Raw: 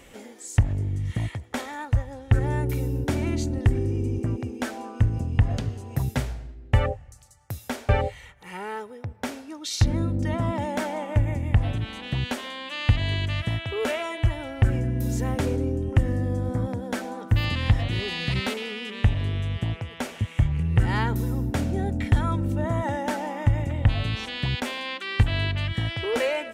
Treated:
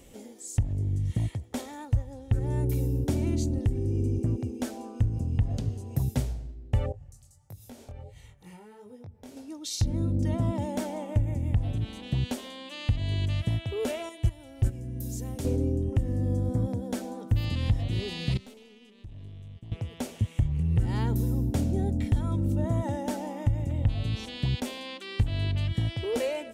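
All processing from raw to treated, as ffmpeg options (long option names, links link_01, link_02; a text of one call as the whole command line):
ffmpeg -i in.wav -filter_complex "[0:a]asettb=1/sr,asplit=3[link_01][link_02][link_03];[link_01]atrim=end=6.924[link_04];[link_02]atrim=start=6.92:end=9.37,asetpts=PTS-STARTPTS,afade=type=in:duration=0.004:curve=qsin,afade=type=out:start_time=2.446:duration=0.004:curve=qsin,equalizer=frequency=110:width=0.88:gain=5.5,acompressor=threshold=-37dB:ratio=6:attack=3.2:release=140:knee=1:detection=peak,flanger=delay=19.5:depth=4:speed=1.5[link_05];[link_03]atrim=start=9.366[link_06];[link_04][link_05]acrossfade=duration=0.004:curve1=hsin:curve2=qsin[link_07];[link_07][link_06]acrossfade=duration=0.004:curve1=qsin:curve2=hsin,asettb=1/sr,asplit=3[link_08][link_09][link_10];[link_08]atrim=end=14.094[link_11];[link_09]atrim=start=14.09:end=15.45,asetpts=PTS-STARTPTS,afade=type=in:duration=0.004:curve=qsin,afade=type=out:start_time=1.356:duration=0.004:curve=qsin,highshelf=frequency=3200:gain=9,acontrast=45,agate=range=-14dB:threshold=-15dB:ratio=16:release=100:detection=peak[link_12];[link_10]atrim=start=15.446[link_13];[link_11][link_12]acrossfade=duration=0.004:curve1=hsin:curve2=qsin[link_14];[link_14][link_13]acrossfade=duration=0.004:curve1=qsin:curve2=hsin,asettb=1/sr,asplit=3[link_15][link_16][link_17];[link_15]atrim=end=18.374[link_18];[link_16]atrim=start=18.37:end=19.72,asetpts=PTS-STARTPTS,afade=type=in:duration=0.004:curve=qsin,afade=type=out:start_time=1.346:duration=0.004:curve=qsin,agate=range=-33dB:threshold=-27dB:ratio=3:release=100:detection=peak,acompressor=threshold=-43dB:ratio=3:attack=3.2:release=140:knee=1:detection=peak,aeval=exprs='(tanh(56.2*val(0)+0.4)-tanh(0.4))/56.2':channel_layout=same[link_19];[link_17]atrim=start=19.716[link_20];[link_18][link_19]acrossfade=duration=0.004:curve1=hsin:curve2=qsin[link_21];[link_21][link_20]acrossfade=duration=0.004:curve1=qsin:curve2=hsin,equalizer=frequency=1600:width=0.62:gain=-13,alimiter=limit=-14.5dB:level=0:latency=1:release=324" out.wav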